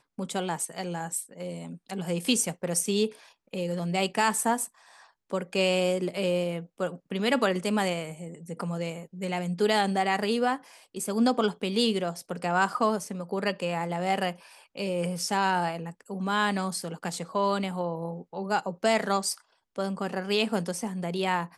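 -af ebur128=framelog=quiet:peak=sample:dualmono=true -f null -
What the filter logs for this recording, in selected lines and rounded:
Integrated loudness:
  I:         -25.6 LUFS
  Threshold: -35.8 LUFS
Loudness range:
  LRA:         2.7 LU
  Threshold: -45.7 LUFS
  LRA low:   -26.8 LUFS
  LRA high:  -24.1 LUFS
Sample peak:
  Peak:      -10.1 dBFS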